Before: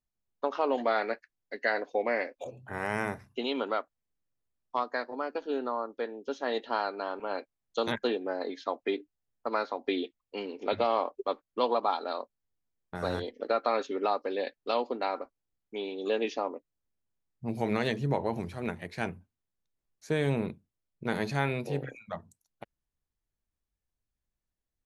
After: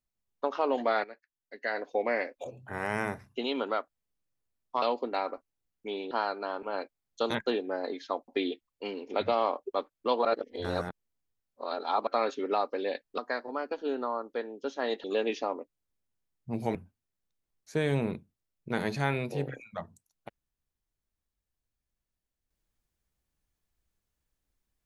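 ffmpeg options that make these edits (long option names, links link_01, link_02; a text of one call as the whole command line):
ffmpeg -i in.wav -filter_complex "[0:a]asplit=10[link_01][link_02][link_03][link_04][link_05][link_06][link_07][link_08][link_09][link_10];[link_01]atrim=end=1.04,asetpts=PTS-STARTPTS,afade=type=out:start_time=1.036:duration=0.004:curve=hsin:silence=0.177828[link_11];[link_02]atrim=start=1.04:end=4.822,asetpts=PTS-STARTPTS,afade=type=in:duration=0.89:curve=qua:silence=0.177828[link_12];[link_03]atrim=start=14.698:end=15.992[link_13];[link_04]atrim=start=6.678:end=8.852[link_14];[link_05]atrim=start=9.798:end=11.772[link_15];[link_06]atrim=start=11.768:end=13.592,asetpts=PTS-STARTPTS,areverse[link_16];[link_07]atrim=start=13.588:end=14.702[link_17];[link_08]atrim=start=4.818:end=6.682[link_18];[link_09]atrim=start=15.988:end=17.702[link_19];[link_10]atrim=start=19.098[link_20];[link_11][link_12]concat=n=2:v=0:a=1[link_21];[link_21][link_13]acrossfade=duration=0.004:curve1=hsin:curve2=hsin[link_22];[link_22][link_14]acrossfade=duration=0.004:curve1=hsin:curve2=hsin[link_23];[link_23][link_15]acrossfade=duration=0.004:curve1=hsin:curve2=hsin[link_24];[link_24][link_16]acrossfade=duration=0.004:curve1=hsin:curve2=hsin[link_25];[link_25][link_17]acrossfade=duration=0.004:curve1=hsin:curve2=hsin[link_26];[link_26][link_18]acrossfade=duration=0.004:curve1=hsin:curve2=hsin[link_27];[link_27][link_19]acrossfade=duration=0.004:curve1=hsin:curve2=hsin[link_28];[link_28][link_20]acrossfade=duration=0.004:curve1=hsin:curve2=hsin" out.wav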